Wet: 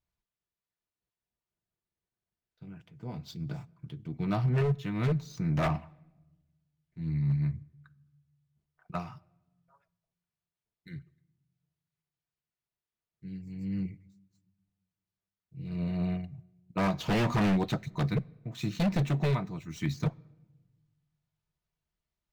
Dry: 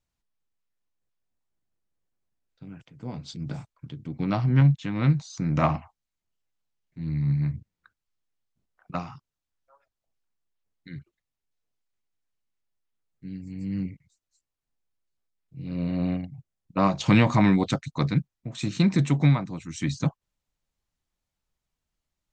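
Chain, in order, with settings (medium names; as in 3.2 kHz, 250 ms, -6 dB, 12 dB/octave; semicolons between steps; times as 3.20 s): median filter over 5 samples; comb of notches 270 Hz; wavefolder -18 dBFS; on a send at -22 dB: reverberation RT60 1.1 s, pre-delay 6 ms; on the sum: slew-rate limiter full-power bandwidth 110 Hz; trim -3 dB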